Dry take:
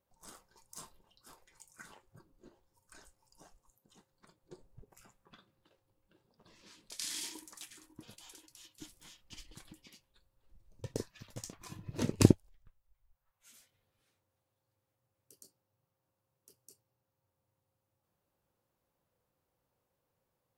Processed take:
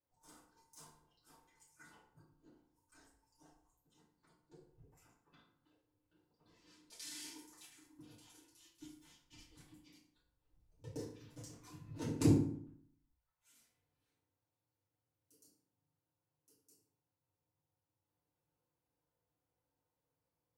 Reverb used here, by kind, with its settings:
feedback delay network reverb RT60 0.62 s, low-frequency decay 1.2×, high-frequency decay 0.65×, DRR −9 dB
level −17 dB

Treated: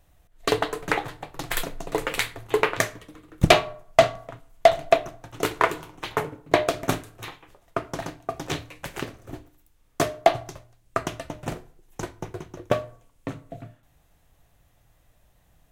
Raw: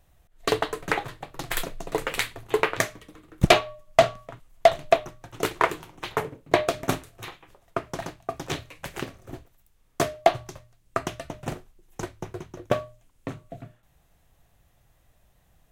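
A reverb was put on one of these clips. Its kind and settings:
feedback delay network reverb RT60 0.58 s, low-frequency decay 1×, high-frequency decay 0.55×, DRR 14 dB
level +1 dB

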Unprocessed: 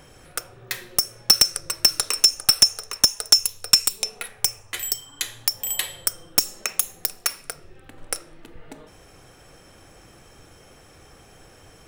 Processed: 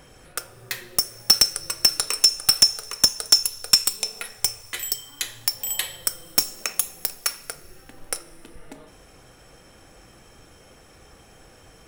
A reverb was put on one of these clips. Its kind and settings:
coupled-rooms reverb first 0.21 s, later 2.7 s, from −18 dB, DRR 11.5 dB
level −1 dB

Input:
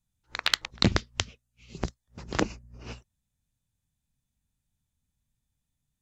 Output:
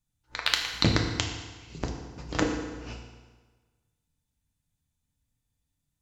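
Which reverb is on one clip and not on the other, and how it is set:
feedback delay network reverb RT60 1.4 s, low-frequency decay 0.95×, high-frequency decay 0.85×, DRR 1 dB
level −1.5 dB

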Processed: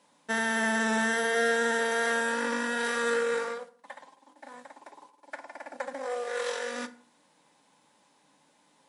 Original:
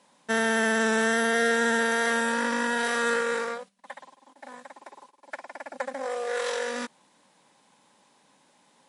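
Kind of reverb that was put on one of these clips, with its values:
feedback delay network reverb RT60 0.46 s, low-frequency decay 1.2×, high-frequency decay 0.65×, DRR 8.5 dB
level −3.5 dB

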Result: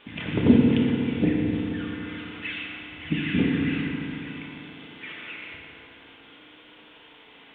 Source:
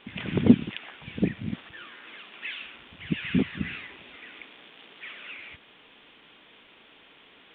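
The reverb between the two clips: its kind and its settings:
feedback delay network reverb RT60 3.2 s, high-frequency decay 0.55×, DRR −2 dB

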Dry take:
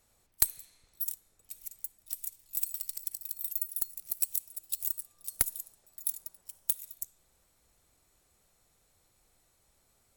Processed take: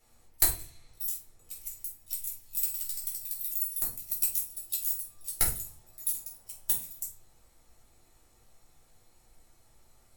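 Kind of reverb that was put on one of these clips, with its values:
rectangular room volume 270 cubic metres, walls furnished, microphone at 4.1 metres
level −2.5 dB

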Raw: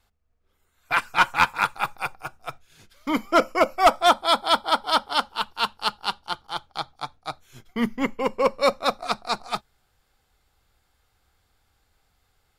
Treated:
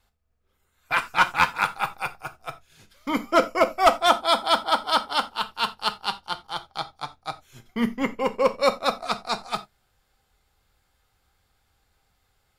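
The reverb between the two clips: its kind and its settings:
reverb whose tail is shaped and stops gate 110 ms falling, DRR 8.5 dB
level −1 dB

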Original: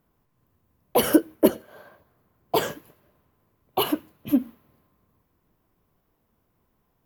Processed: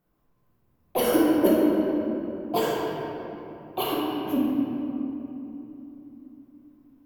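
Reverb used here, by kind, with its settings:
rectangular room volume 170 cubic metres, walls hard, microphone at 0.89 metres
level −7 dB

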